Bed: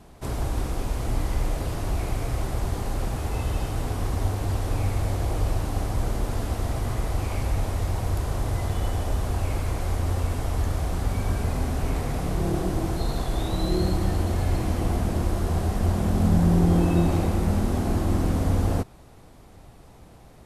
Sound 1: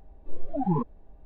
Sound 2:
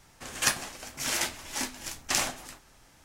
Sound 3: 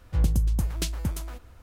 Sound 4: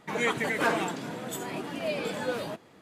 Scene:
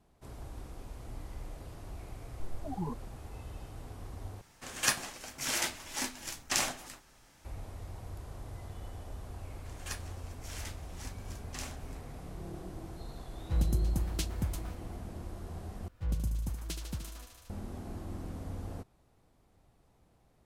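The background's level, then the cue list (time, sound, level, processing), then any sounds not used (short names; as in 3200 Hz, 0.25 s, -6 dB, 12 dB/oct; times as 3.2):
bed -18 dB
2.11 add 1 -11.5 dB
4.41 replace with 2 -3 dB
9.44 add 2 -16.5 dB
13.37 add 3 -6 dB
15.88 replace with 3 -10.5 dB + thinning echo 75 ms, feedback 83%, high-pass 290 Hz, level -7 dB
not used: 4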